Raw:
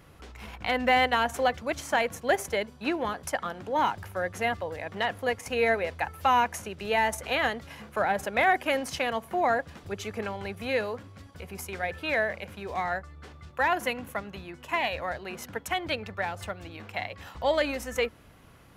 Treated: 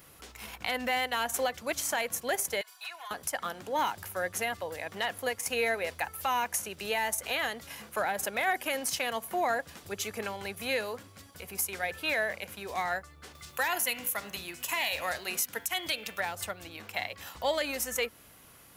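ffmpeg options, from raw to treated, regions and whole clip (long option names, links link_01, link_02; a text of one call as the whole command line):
ffmpeg -i in.wav -filter_complex "[0:a]asettb=1/sr,asplit=3[link_01][link_02][link_03];[link_01]atrim=end=2.614[link_04];[link_02]atrim=start=2.61:end=3.11,asetpts=PTS-STARTPTS,afade=type=in:duration=0.004:curve=qsin,afade=type=out:start_time=0.496:duration=0.004:curve=qsin,highpass=frequency=890:width=0.5412,highpass=frequency=890:width=1.3066,aecho=1:1:2.8:0.91,atrim=end_sample=22050,acompressor=threshold=-40dB:ratio=4:attack=3.2:release=140:knee=1:detection=peak[link_05];[link_03]atrim=start=3.106[link_06];[link_04][link_05]acrossfade=duration=0.004:curve1=hsin:curve2=qsin[link_07];[link_07][link_06]acrossfade=duration=0.004:curve1=qsin:curve2=hsin,asettb=1/sr,asplit=3[link_08][link_09][link_10];[link_08]atrim=end=13.354[link_11];[link_09]atrim=start=13.35:end=16.2,asetpts=PTS-STARTPTS,afade=type=in:duration=0.004:curve=qsin,afade=type=out:start_time=2.846:duration=0.004:curve=qsin,highshelf=frequency=2600:gain=10,bandreject=frequency=98.48:width_type=h:width=4,bandreject=frequency=196.96:width_type=h:width=4,bandreject=frequency=295.44:width_type=h:width=4,bandreject=frequency=393.92:width_type=h:width=4,bandreject=frequency=492.4:width_type=h:width=4,bandreject=frequency=590.88:width_type=h:width=4,bandreject=frequency=689.36:width_type=h:width=4,bandreject=frequency=787.84:width_type=h:width=4,bandreject=frequency=886.32:width_type=h:width=4,bandreject=frequency=984.8:width_type=h:width=4,bandreject=frequency=1083.28:width_type=h:width=4,bandreject=frequency=1181.76:width_type=h:width=4,bandreject=frequency=1280.24:width_type=h:width=4,bandreject=frequency=1378.72:width_type=h:width=4,bandreject=frequency=1477.2:width_type=h:width=4,bandreject=frequency=1575.68:width_type=h:width=4,bandreject=frequency=1674.16:width_type=h:width=4,bandreject=frequency=1772.64:width_type=h:width=4,bandreject=frequency=1871.12:width_type=h:width=4,bandreject=frequency=1969.6:width_type=h:width=4,bandreject=frequency=2068.08:width_type=h:width=4,bandreject=frequency=2166.56:width_type=h:width=4,bandreject=frequency=2265.04:width_type=h:width=4,bandreject=frequency=2363.52:width_type=h:width=4,bandreject=frequency=2462:width_type=h:width=4,bandreject=frequency=2560.48:width_type=h:width=4,bandreject=frequency=2658.96:width_type=h:width=4,bandreject=frequency=2757.44:width_type=h:width=4,bandreject=frequency=2855.92:width_type=h:width=4,bandreject=frequency=2954.4:width_type=h:width=4,bandreject=frequency=3052.88:width_type=h:width=4,bandreject=frequency=3151.36:width_type=h:width=4,bandreject=frequency=3249.84:width_type=h:width=4,bandreject=frequency=3348.32:width_type=h:width=4,bandreject=frequency=3446.8:width_type=h:width=4,bandreject=frequency=3545.28:width_type=h:width=4,bandreject=frequency=3643.76:width_type=h:width=4,acompressor=mode=upward:threshold=-41dB:ratio=2.5:attack=3.2:release=140:knee=2.83:detection=peak[link_12];[link_10]atrim=start=16.196[link_13];[link_11][link_12]acrossfade=duration=0.004:curve1=hsin:curve2=qsin[link_14];[link_14][link_13]acrossfade=duration=0.004:curve1=qsin:curve2=hsin,aemphasis=mode=production:type=75kf,alimiter=limit=-16dB:level=0:latency=1:release=177,lowshelf=frequency=170:gain=-7.5,volume=-2.5dB" out.wav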